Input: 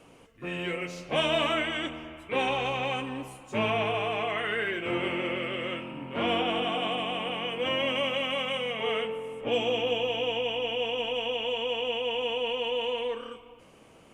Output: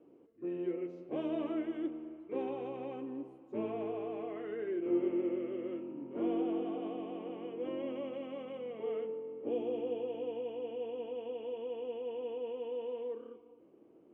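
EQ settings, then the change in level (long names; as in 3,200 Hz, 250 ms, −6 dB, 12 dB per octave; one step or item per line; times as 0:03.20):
resonant band-pass 340 Hz, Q 4.1
+2.5 dB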